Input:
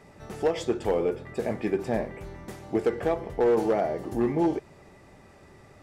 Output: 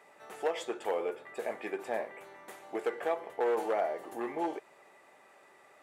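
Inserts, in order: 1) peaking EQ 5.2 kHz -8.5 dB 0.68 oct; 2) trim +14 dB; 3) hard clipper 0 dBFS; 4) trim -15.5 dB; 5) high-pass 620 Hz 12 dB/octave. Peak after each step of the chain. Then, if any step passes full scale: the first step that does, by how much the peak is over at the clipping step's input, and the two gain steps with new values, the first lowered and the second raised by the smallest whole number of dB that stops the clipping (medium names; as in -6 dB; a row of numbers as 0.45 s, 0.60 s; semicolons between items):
-16.5 dBFS, -2.5 dBFS, -2.5 dBFS, -18.0 dBFS, -18.0 dBFS; nothing clips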